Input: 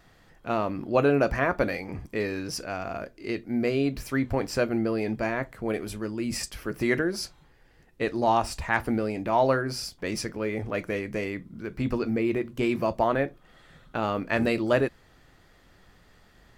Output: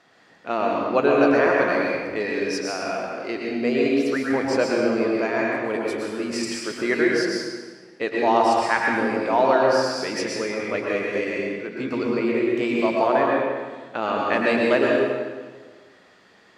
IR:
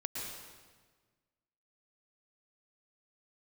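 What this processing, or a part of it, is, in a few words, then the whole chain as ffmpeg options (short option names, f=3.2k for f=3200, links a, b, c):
supermarket ceiling speaker: -filter_complex "[0:a]highpass=280,lowpass=6.7k[a];[1:a]atrim=start_sample=2205[b];[a][b]afir=irnorm=-1:irlink=0,volume=5dB"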